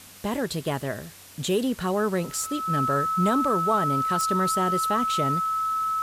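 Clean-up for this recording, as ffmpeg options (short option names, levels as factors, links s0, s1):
-af "adeclick=t=4,bandreject=f=94.5:t=h:w=4,bandreject=f=189:t=h:w=4,bandreject=f=283.5:t=h:w=4,bandreject=f=1300:w=30,afwtdn=0.005"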